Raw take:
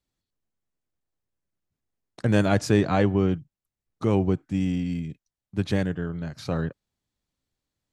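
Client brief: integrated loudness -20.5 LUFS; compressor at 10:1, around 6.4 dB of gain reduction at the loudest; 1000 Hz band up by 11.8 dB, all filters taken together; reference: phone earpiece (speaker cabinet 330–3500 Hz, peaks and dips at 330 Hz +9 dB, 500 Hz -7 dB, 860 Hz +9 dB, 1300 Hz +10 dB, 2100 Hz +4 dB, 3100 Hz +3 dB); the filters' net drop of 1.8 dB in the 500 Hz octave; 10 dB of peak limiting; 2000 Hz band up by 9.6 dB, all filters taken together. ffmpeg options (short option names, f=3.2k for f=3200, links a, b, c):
-af "equalizer=f=500:t=o:g=-3.5,equalizer=f=1k:t=o:g=7,equalizer=f=2k:t=o:g=4.5,acompressor=threshold=-21dB:ratio=10,alimiter=limit=-19.5dB:level=0:latency=1,highpass=330,equalizer=f=330:t=q:w=4:g=9,equalizer=f=500:t=q:w=4:g=-7,equalizer=f=860:t=q:w=4:g=9,equalizer=f=1.3k:t=q:w=4:g=10,equalizer=f=2.1k:t=q:w=4:g=4,equalizer=f=3.1k:t=q:w=4:g=3,lowpass=f=3.5k:w=0.5412,lowpass=f=3.5k:w=1.3066,volume=11.5dB"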